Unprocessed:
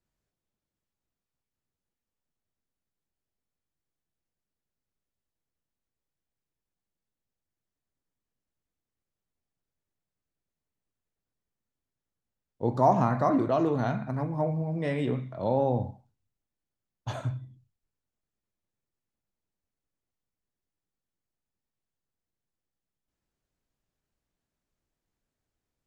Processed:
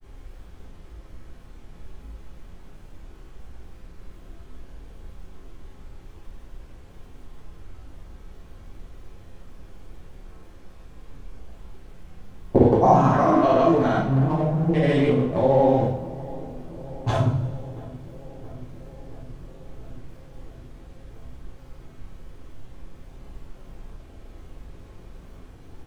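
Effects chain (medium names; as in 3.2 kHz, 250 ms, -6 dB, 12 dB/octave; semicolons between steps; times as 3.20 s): local Wiener filter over 25 samples; recorder AGC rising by 19 dB/s; added noise brown -49 dBFS; granulator; on a send: filtered feedback delay 675 ms, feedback 77%, low-pass 1.2 kHz, level -19 dB; on the sum: two-slope reverb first 0.46 s, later 1.8 s, from -17 dB, DRR -5.5 dB; trim +2 dB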